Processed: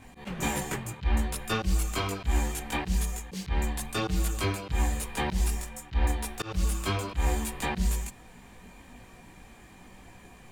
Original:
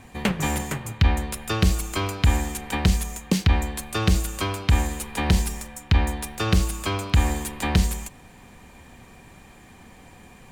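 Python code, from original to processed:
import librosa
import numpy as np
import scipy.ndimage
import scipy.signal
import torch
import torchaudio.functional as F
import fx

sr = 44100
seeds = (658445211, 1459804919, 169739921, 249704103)

y = fx.chorus_voices(x, sr, voices=4, hz=0.88, base_ms=19, depth_ms=3.3, mix_pct=50)
y = fx.auto_swell(y, sr, attack_ms=154.0)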